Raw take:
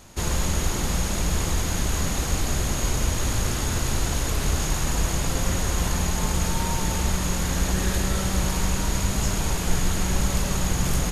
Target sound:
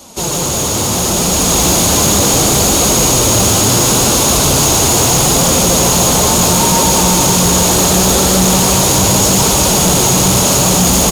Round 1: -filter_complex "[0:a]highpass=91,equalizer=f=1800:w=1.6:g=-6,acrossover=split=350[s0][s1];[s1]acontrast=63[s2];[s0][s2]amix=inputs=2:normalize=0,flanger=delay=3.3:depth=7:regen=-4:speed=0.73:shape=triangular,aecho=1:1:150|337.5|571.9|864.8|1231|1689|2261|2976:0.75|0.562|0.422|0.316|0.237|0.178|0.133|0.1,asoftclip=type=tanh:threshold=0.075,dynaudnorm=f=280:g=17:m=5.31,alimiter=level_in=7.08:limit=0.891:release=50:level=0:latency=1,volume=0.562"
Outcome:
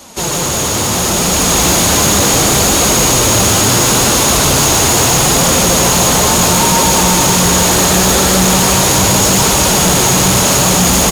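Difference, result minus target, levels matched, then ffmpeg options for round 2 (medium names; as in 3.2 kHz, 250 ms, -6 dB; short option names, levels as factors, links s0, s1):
2 kHz band +4.5 dB
-filter_complex "[0:a]highpass=91,equalizer=f=1800:w=1.6:g=-14.5,acrossover=split=350[s0][s1];[s1]acontrast=63[s2];[s0][s2]amix=inputs=2:normalize=0,flanger=delay=3.3:depth=7:regen=-4:speed=0.73:shape=triangular,aecho=1:1:150|337.5|571.9|864.8|1231|1689|2261|2976:0.75|0.562|0.422|0.316|0.237|0.178|0.133|0.1,asoftclip=type=tanh:threshold=0.075,dynaudnorm=f=280:g=17:m=5.31,alimiter=level_in=7.08:limit=0.891:release=50:level=0:latency=1,volume=0.562"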